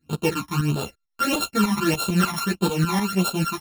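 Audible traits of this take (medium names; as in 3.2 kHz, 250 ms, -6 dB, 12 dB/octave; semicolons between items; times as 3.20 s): a buzz of ramps at a fixed pitch in blocks of 32 samples; phasing stages 12, 1.6 Hz, lowest notch 450–2000 Hz; tremolo saw up 6.7 Hz, depth 70%; a shimmering, thickened sound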